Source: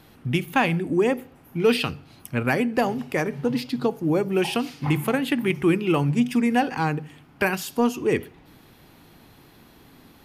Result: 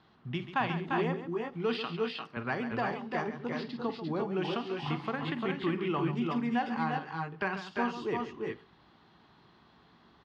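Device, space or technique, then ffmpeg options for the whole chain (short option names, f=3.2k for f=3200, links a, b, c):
guitar cabinet: -filter_complex "[0:a]asettb=1/sr,asplit=3[a][b][c];[a]atrim=end=1.814[d];[b]atrim=start=1.81:end=2.37,asetpts=PTS-STARTPTS,afade=t=in:d=0.004:c=qsin,afade=t=out:st=0.556:d=0.004:c=qsin,highpass=280[e];[c]atrim=start=2.366[f];[d][e]acrossfade=d=0.004:c1=hsin:c2=qsin[g];[g][f]acrossfade=d=0.004:c1=qsin:c2=hsin,highpass=77,equalizer=f=94:t=q:w=4:g=-8,equalizer=f=140:t=q:w=4:g=-4,equalizer=f=280:t=q:w=4:g=-8,equalizer=f=510:t=q:w=4:g=-7,equalizer=f=1.1k:t=q:w=4:g=5,equalizer=f=2.4k:t=q:w=4:g=-7,lowpass=f=4.4k:w=0.5412,lowpass=f=4.4k:w=1.3066,aecho=1:1:47|138|347|365:0.224|0.282|0.596|0.473,volume=-9dB"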